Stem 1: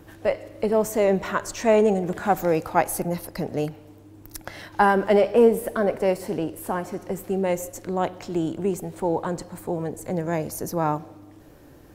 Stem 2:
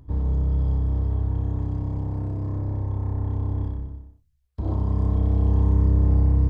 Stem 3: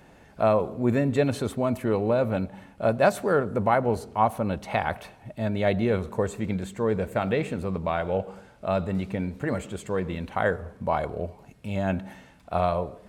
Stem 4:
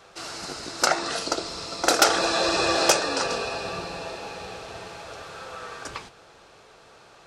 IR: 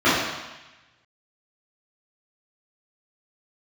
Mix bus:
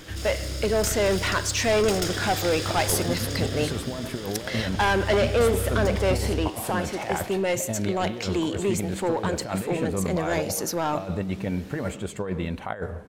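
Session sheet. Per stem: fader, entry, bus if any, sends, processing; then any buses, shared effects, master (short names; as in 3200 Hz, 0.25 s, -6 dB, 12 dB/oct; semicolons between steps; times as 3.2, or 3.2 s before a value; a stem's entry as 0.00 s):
+1.5 dB, 0.00 s, no send, weighting filter D; soft clip -19 dBFS, distortion -9 dB
-14.5 dB, 0.00 s, no send, bell 88 Hz +12 dB 0.47 oct
-1.0 dB, 2.30 s, no send, negative-ratio compressor -28 dBFS, ratio -0.5
-9.5 dB, 0.00 s, no send, minimum comb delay 0.59 ms; bell 1100 Hz -10.5 dB 1.8 oct; fast leveller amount 50%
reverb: off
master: dry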